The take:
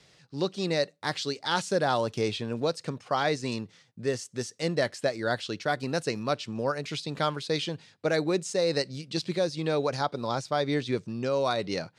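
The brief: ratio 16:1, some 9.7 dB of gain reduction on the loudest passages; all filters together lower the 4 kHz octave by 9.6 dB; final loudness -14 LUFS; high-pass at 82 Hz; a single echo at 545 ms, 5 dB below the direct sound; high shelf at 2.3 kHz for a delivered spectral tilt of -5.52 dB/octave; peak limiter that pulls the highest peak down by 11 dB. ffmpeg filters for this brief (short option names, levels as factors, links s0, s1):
-af "highpass=82,highshelf=f=2300:g=-9,equalizer=f=4000:t=o:g=-3.5,acompressor=threshold=0.0251:ratio=16,alimiter=level_in=2.11:limit=0.0631:level=0:latency=1,volume=0.473,aecho=1:1:545:0.562,volume=21.1"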